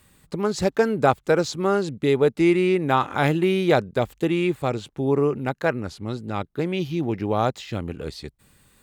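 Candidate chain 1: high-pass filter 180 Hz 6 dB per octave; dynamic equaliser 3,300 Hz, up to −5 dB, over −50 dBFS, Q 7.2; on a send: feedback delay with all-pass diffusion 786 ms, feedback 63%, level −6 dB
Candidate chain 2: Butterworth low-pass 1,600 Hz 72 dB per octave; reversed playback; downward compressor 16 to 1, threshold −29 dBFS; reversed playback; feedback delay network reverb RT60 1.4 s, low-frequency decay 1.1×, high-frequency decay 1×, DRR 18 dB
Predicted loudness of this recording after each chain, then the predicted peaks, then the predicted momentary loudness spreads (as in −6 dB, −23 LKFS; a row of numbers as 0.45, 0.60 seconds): −23.0, −35.0 LKFS; −3.5, −18.5 dBFS; 9, 4 LU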